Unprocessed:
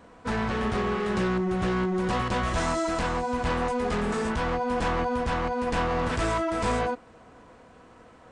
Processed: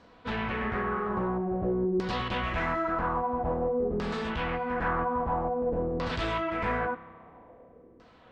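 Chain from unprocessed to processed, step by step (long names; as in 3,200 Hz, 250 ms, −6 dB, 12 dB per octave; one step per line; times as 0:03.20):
auto-filter low-pass saw down 0.5 Hz 360–4,900 Hz
spring reverb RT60 2 s, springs 30 ms, chirp 70 ms, DRR 14.5 dB
level −5 dB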